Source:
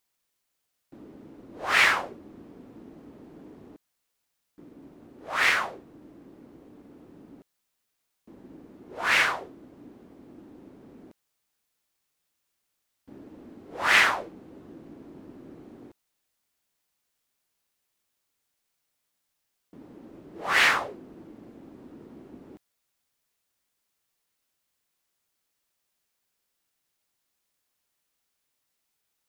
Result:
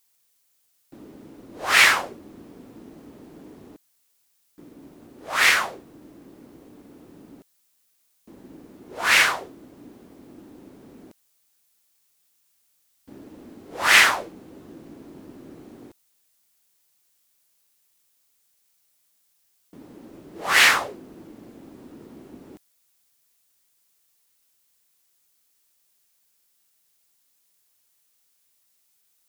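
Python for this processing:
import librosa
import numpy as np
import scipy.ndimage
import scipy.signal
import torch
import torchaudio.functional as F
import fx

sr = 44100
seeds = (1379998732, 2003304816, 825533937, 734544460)

y = fx.high_shelf(x, sr, hz=4100.0, db=11.0)
y = F.gain(torch.from_numpy(y), 2.5).numpy()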